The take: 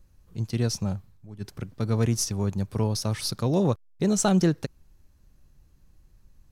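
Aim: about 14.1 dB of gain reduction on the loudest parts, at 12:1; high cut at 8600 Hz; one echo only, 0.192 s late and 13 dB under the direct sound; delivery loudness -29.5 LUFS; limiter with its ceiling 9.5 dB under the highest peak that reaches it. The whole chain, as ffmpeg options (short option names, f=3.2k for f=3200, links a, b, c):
-af "lowpass=8.6k,acompressor=threshold=-32dB:ratio=12,alimiter=level_in=7dB:limit=-24dB:level=0:latency=1,volume=-7dB,aecho=1:1:192:0.224,volume=11.5dB"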